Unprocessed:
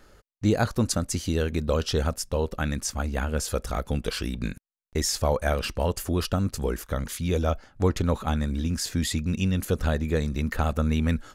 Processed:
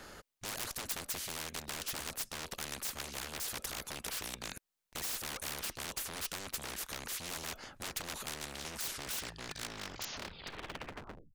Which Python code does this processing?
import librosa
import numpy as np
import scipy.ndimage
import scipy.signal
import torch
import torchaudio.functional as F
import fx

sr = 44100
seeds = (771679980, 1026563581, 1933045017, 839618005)

y = fx.tape_stop_end(x, sr, length_s=2.79)
y = 10.0 ** (-26.0 / 20.0) * (np.abs((y / 10.0 ** (-26.0 / 20.0) + 3.0) % 4.0 - 2.0) - 1.0)
y = fx.spectral_comp(y, sr, ratio=4.0)
y = y * 10.0 ** (4.5 / 20.0)